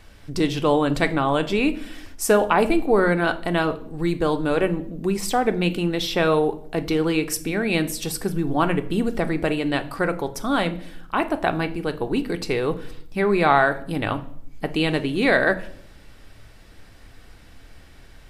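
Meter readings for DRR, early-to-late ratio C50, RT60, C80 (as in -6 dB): 8.0 dB, 16.0 dB, 0.65 s, 19.5 dB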